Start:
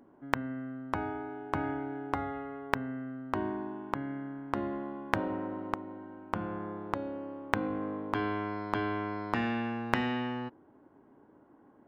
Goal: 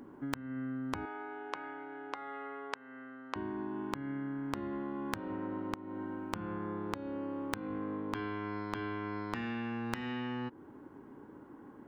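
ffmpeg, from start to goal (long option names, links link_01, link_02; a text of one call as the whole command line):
ffmpeg -i in.wav -filter_complex "[0:a]equalizer=frequency=660:width_type=o:width=0.46:gain=-10,acompressor=threshold=-43dB:ratio=10,asettb=1/sr,asplit=3[link_01][link_02][link_03];[link_01]atrim=end=1.054[link_04];[link_02]atrim=start=1.05:end=3.36,asetpts=PTS-STARTPTS,afade=type=in:duration=0.004:curve=qsin,afade=type=out:start_time=2.306:duration=0.004:curve=qsin,highpass=520,lowpass=5400[link_05];[link_03]atrim=start=3.356[link_06];[link_04][link_05]acrossfade=duration=0.004:curve1=hsin:curve2=qsin[link_07];[link_07][link_06]acrossfade=duration=0.004:curve1=qsin:curve2=hsin,volume=8.5dB" out.wav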